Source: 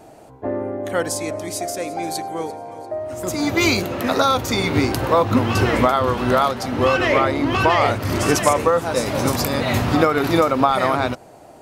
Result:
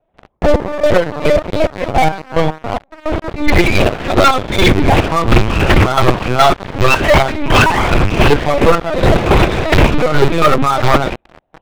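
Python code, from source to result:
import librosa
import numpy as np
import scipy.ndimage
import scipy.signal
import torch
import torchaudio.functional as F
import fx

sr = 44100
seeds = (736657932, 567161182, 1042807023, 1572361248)

p1 = fx.rattle_buzz(x, sr, strikes_db=-21.0, level_db=-14.0)
p2 = fx.chorus_voices(p1, sr, voices=6, hz=0.44, base_ms=12, depth_ms=1.9, mix_pct=55)
p3 = fx.lpc_vocoder(p2, sr, seeds[0], excitation='pitch_kept', order=8)
p4 = fx.dynamic_eq(p3, sr, hz=360.0, q=6.5, threshold_db=-40.0, ratio=4.0, max_db=4)
p5 = p4 + fx.echo_feedback(p4, sr, ms=65, feedback_pct=33, wet_db=-20, dry=0)
p6 = fx.step_gate(p5, sr, bpm=108, pattern='.x.x..x.', floor_db=-12.0, edge_ms=4.5)
p7 = fx.leveller(p6, sr, passes=5)
p8 = fx.rider(p7, sr, range_db=4, speed_s=0.5)
p9 = p7 + F.gain(torch.from_numpy(p8), -0.5).numpy()
y = F.gain(torch.from_numpy(p9), -4.5).numpy()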